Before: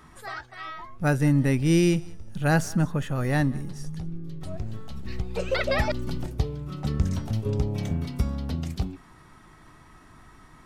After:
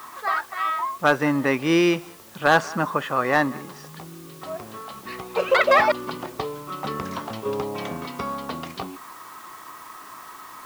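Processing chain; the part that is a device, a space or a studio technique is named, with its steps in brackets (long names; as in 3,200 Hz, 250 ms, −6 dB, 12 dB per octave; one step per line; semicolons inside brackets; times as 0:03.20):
drive-through speaker (band-pass filter 420–3,500 Hz; parametric band 1,100 Hz +11 dB 0.41 octaves; hard clipping −17 dBFS, distortion −17 dB; white noise bed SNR 24 dB)
level +8.5 dB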